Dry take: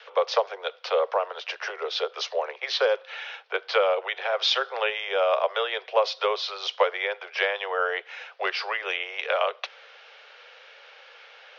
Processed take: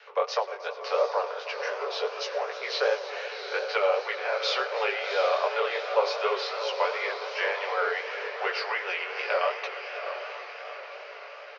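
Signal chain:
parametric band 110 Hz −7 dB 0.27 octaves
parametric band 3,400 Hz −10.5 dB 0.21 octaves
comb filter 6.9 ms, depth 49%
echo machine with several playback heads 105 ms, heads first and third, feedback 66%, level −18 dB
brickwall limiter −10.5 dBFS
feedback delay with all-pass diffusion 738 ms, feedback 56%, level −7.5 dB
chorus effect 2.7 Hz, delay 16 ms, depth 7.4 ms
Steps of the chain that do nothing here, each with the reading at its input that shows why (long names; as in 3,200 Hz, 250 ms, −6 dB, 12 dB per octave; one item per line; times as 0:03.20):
parametric band 110 Hz: nothing at its input below 340 Hz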